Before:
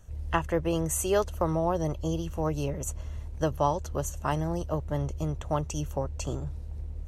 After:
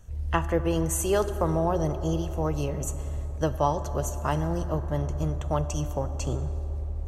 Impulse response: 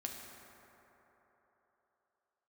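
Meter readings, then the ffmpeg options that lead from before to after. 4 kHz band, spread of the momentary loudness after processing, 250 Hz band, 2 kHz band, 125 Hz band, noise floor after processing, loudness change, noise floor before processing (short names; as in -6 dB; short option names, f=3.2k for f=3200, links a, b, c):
+1.0 dB, 6 LU, +2.0 dB, +1.0 dB, +3.5 dB, -33 dBFS, +2.0 dB, -39 dBFS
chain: -filter_complex "[0:a]asplit=2[a][b];[1:a]atrim=start_sample=2205,lowshelf=f=250:g=5.5[c];[b][c]afir=irnorm=-1:irlink=0,volume=-3dB[d];[a][d]amix=inputs=2:normalize=0,volume=-2.5dB"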